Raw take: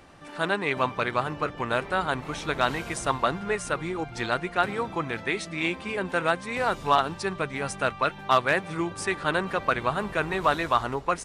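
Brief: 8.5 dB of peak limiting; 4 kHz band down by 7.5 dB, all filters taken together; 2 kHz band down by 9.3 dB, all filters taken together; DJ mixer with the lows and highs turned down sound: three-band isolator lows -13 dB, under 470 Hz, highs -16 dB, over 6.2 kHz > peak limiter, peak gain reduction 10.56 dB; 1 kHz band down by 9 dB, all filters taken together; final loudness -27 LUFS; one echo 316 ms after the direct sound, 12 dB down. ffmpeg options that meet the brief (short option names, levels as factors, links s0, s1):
-filter_complex "[0:a]equalizer=f=1000:t=o:g=-8.5,equalizer=f=2000:t=o:g=-8,equalizer=f=4000:t=o:g=-5,alimiter=limit=0.075:level=0:latency=1,acrossover=split=470 6200:gain=0.224 1 0.158[s0][s1][s2];[s0][s1][s2]amix=inputs=3:normalize=0,aecho=1:1:316:0.251,volume=5.62,alimiter=limit=0.158:level=0:latency=1"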